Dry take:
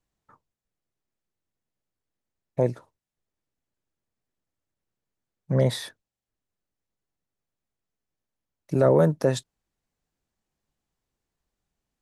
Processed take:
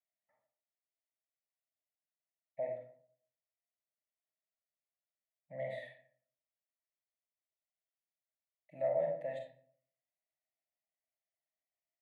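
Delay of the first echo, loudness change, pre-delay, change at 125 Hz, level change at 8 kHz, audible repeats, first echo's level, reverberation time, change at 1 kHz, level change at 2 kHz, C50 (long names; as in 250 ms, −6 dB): no echo audible, −15.0 dB, 35 ms, −29.5 dB, below −30 dB, no echo audible, no echo audible, 0.55 s, −12.0 dB, −12.0 dB, 4.0 dB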